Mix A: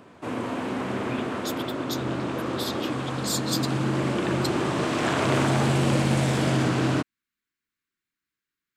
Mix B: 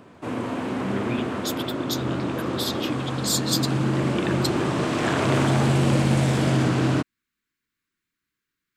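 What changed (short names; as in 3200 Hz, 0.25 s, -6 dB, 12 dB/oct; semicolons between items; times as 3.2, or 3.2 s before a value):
speech +4.5 dB; master: add low shelf 270 Hz +4 dB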